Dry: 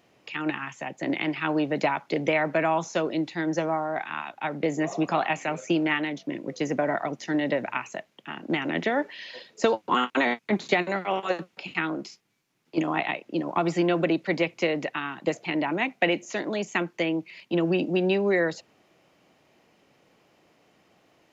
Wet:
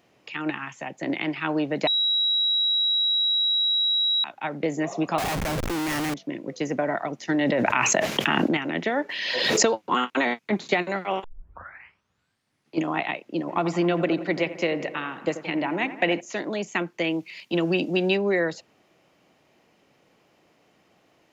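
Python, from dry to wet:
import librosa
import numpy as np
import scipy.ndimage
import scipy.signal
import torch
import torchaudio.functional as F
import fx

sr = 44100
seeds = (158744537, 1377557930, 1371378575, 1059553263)

y = fx.schmitt(x, sr, flips_db=-35.5, at=(5.18, 6.14))
y = fx.env_flatten(y, sr, amount_pct=100, at=(7.29, 8.57))
y = fx.pre_swell(y, sr, db_per_s=28.0, at=(9.09, 9.77))
y = fx.echo_wet_lowpass(y, sr, ms=87, feedback_pct=64, hz=1900.0, wet_db=-12, at=(13.47, 16.19), fade=0.02)
y = fx.high_shelf(y, sr, hz=2500.0, db=9.0, at=(17.04, 18.17))
y = fx.edit(y, sr, fx.bleep(start_s=1.87, length_s=2.37, hz=3870.0, db=-19.5),
    fx.tape_start(start_s=11.24, length_s=1.55), tone=tone)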